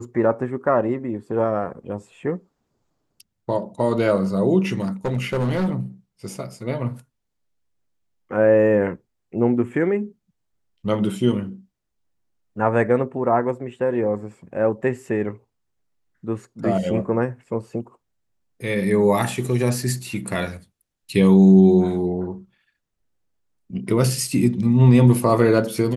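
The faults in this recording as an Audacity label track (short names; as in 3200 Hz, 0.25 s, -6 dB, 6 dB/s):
4.780000	5.750000	clipped -18 dBFS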